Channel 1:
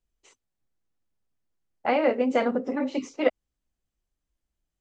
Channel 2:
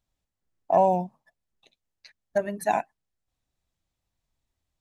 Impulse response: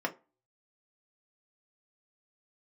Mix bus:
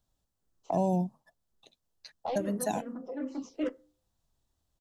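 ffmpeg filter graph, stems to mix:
-filter_complex "[0:a]asoftclip=type=tanh:threshold=-19.5dB,asplit=2[a][b];[b]afreqshift=-2.5[c];[a][c]amix=inputs=2:normalize=1,adelay=400,volume=-3.5dB,asplit=2[d][e];[e]volume=-12.5dB[f];[1:a]volume=3dB,asplit=2[g][h];[h]apad=whole_len=229404[i];[d][i]sidechaincompress=threshold=-34dB:ratio=8:attack=34:release=670[j];[2:a]atrim=start_sample=2205[k];[f][k]afir=irnorm=-1:irlink=0[l];[j][g][l]amix=inputs=3:normalize=0,equalizer=f=2.2k:t=o:w=0.62:g=-10.5,acrossover=split=350|3000[m][n][o];[n]acompressor=threshold=-33dB:ratio=6[p];[m][p][o]amix=inputs=3:normalize=0"

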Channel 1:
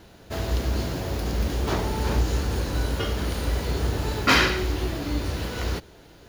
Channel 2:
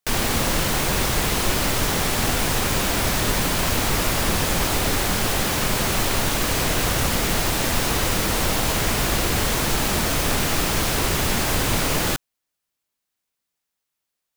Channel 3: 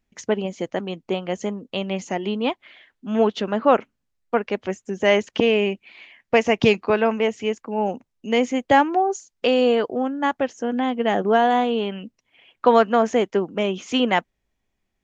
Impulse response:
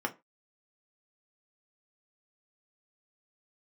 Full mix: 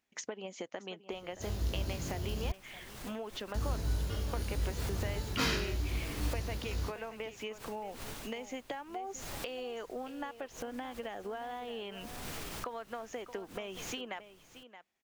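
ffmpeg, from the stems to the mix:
-filter_complex "[0:a]flanger=delay=19.5:depth=3.3:speed=0.38,bass=f=250:g=8,treble=f=4k:g=8,adelay=1100,volume=-13dB,asplit=3[a][b][c];[a]atrim=end=2.52,asetpts=PTS-STARTPTS,afade=t=out:st=2.516:d=0.004:c=hsin[d];[b]atrim=start=2.52:end=3.54,asetpts=PTS-STARTPTS,volume=0[e];[c]atrim=start=3.54,asetpts=PTS-STARTPTS,afade=t=in:d=0.004:c=hsin[f];[d][e][f]concat=n=3:v=0:a=1[g];[1:a]alimiter=limit=-17dB:level=0:latency=1:release=163,aeval=exprs='val(0)*pow(10,-18*(0.5-0.5*cos(2*PI*0.66*n/s))/20)':c=same,adelay=1850,volume=-11dB,asplit=2[h][i];[i]volume=-23dB[j];[2:a]highpass=f=610:p=1,acompressor=threshold=-27dB:ratio=4,volume=-1dB,asplit=3[k][l][m];[l]volume=-23.5dB[n];[m]apad=whole_len=714950[o];[h][o]sidechaincompress=threshold=-40dB:ratio=8:attack=9.4:release=116[p];[p][k]amix=inputs=2:normalize=0,acompressor=threshold=-38dB:ratio=6,volume=0dB[q];[j][n]amix=inputs=2:normalize=0,aecho=0:1:622:1[r];[g][q][r]amix=inputs=3:normalize=0"

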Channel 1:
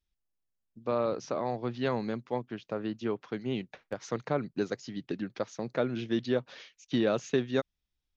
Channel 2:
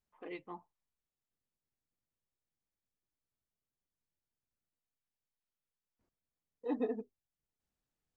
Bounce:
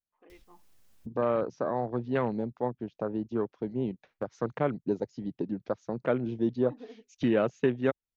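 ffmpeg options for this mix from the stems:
-filter_complex "[0:a]afwtdn=0.0112,acompressor=mode=upward:threshold=-33dB:ratio=2.5,adelay=300,volume=2dB[a];[1:a]volume=-11dB[b];[a][b]amix=inputs=2:normalize=0"

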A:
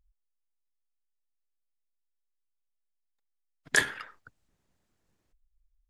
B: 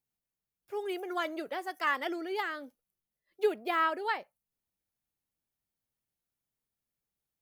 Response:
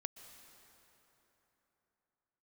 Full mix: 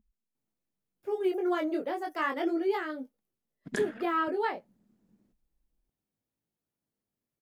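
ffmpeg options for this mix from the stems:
-filter_complex "[0:a]equalizer=f=210:w=2.4:g=15,volume=-7.5dB[a];[1:a]flanger=delay=18.5:depth=4.5:speed=0.33,adelay=350,volume=-1.5dB[b];[a][b]amix=inputs=2:normalize=0,equalizer=f=270:w=0.41:g=13.5,alimiter=limit=-19dB:level=0:latency=1:release=322"

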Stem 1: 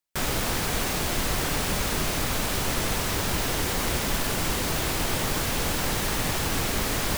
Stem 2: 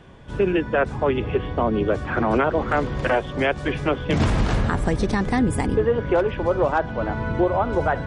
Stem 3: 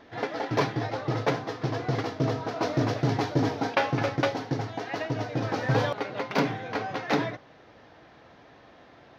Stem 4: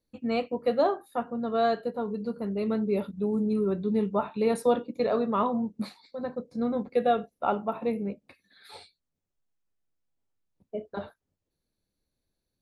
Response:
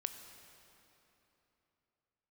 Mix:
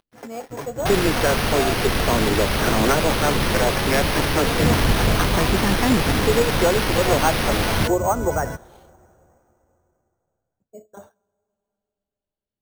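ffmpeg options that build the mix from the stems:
-filter_complex "[0:a]aexciter=amount=3.1:drive=5.8:freq=8.4k,adelay=700,volume=3dB,asplit=2[a][b];[b]volume=-15dB[c];[1:a]acrossover=split=410[d][e];[d]aeval=exprs='val(0)*(1-0.5/2+0.5/2*cos(2*PI*4.8*n/s))':c=same[f];[e]aeval=exprs='val(0)*(1-0.5/2-0.5/2*cos(2*PI*4.8*n/s))':c=same[g];[f][g]amix=inputs=2:normalize=0,adelay=500,volume=1dB,asplit=2[h][i];[i]volume=-13dB[j];[2:a]acompressor=mode=upward:threshold=-39dB:ratio=2.5,aeval=exprs='sgn(val(0))*max(abs(val(0))-0.0133,0)':c=same,volume=-7dB[k];[3:a]adynamicequalizer=threshold=0.0126:dfrequency=800:dqfactor=0.92:tfrequency=800:tqfactor=0.92:attack=5:release=100:ratio=0.375:range=3.5:mode=boostabove:tftype=bell,volume=-9.5dB,asplit=2[l][m];[m]volume=-18.5dB[n];[4:a]atrim=start_sample=2205[o];[c][j][n]amix=inputs=3:normalize=0[p];[p][o]afir=irnorm=-1:irlink=0[q];[a][h][k][l][q]amix=inputs=5:normalize=0,highshelf=f=5.2k:g=-10,acrusher=samples=6:mix=1:aa=0.000001"

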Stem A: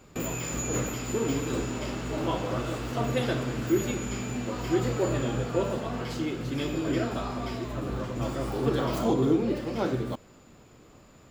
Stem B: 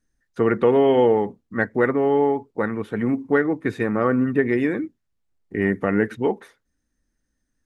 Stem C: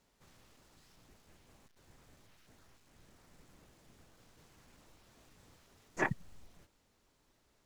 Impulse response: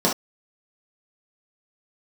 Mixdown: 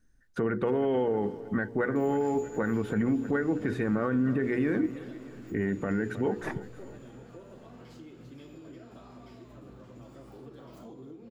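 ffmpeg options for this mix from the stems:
-filter_complex "[0:a]acompressor=threshold=-32dB:ratio=6,lowshelf=f=99:g=-11.5,adelay=1800,volume=-16dB[a];[1:a]equalizer=f=1.5k:w=7.7:g=9,bandreject=f=60:t=h:w=6,bandreject=f=120:t=h:w=6,bandreject=f=180:t=h:w=6,bandreject=f=240:t=h:w=6,bandreject=f=300:t=h:w=6,bandreject=f=360:t=h:w=6,bandreject=f=420:t=h:w=6,bandreject=f=480:t=h:w=6,acompressor=threshold=-27dB:ratio=6,volume=0.5dB,asplit=2[b][c];[c]volume=-18dB[d];[2:a]adelay=450,volume=-6.5dB[e];[d]aecho=0:1:315|630|945|1260|1575|1890|2205|2520:1|0.52|0.27|0.141|0.0731|0.038|0.0198|0.0103[f];[a][b][e][f]amix=inputs=4:normalize=0,lowshelf=f=420:g=8,alimiter=limit=-19dB:level=0:latency=1:release=21"

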